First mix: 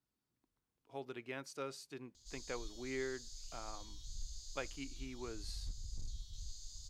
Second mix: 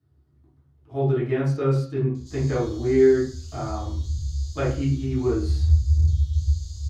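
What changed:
background +5.0 dB
reverb: on, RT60 0.45 s

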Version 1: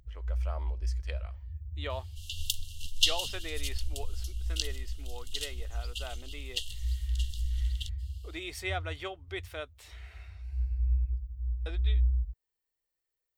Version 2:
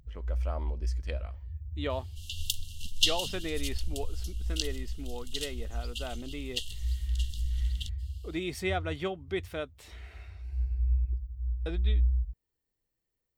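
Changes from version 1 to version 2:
speech: add low-shelf EQ 400 Hz +11.5 dB
master: add parametric band 190 Hz +13 dB 0.74 octaves

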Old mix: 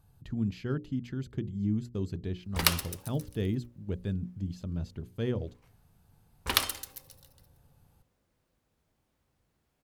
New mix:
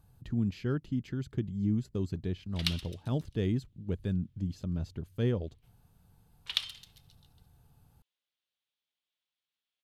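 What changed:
background: add resonant band-pass 3,400 Hz, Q 3.3
master: remove mains-hum notches 60/120/180/240/300/360/420/480/540 Hz

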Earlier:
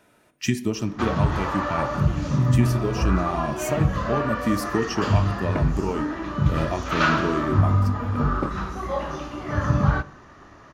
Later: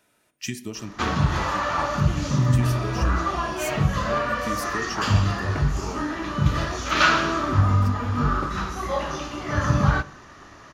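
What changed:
speech −9.5 dB
second sound −6.5 dB
master: add high-shelf EQ 2,200 Hz +9.5 dB

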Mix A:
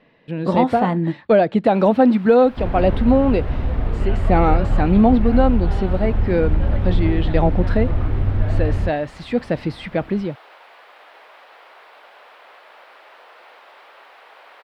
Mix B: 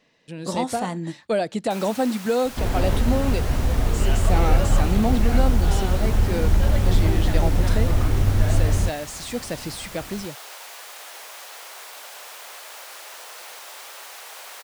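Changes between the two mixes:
speech −10.0 dB
master: remove high-frequency loss of the air 440 metres

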